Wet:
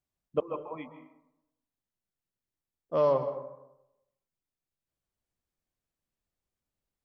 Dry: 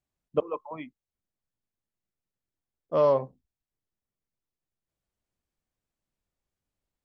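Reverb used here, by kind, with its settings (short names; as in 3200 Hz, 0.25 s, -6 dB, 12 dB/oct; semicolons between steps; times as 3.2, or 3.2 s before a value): plate-style reverb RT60 0.88 s, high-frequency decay 0.5×, pre-delay 0.12 s, DRR 10 dB; gain -3 dB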